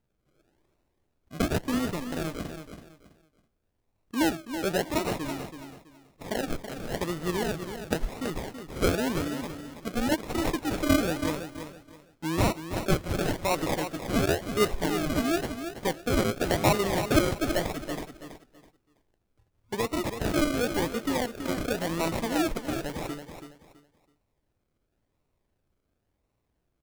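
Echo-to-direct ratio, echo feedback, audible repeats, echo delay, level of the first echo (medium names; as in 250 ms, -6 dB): -8.5 dB, 26%, 3, 328 ms, -9.0 dB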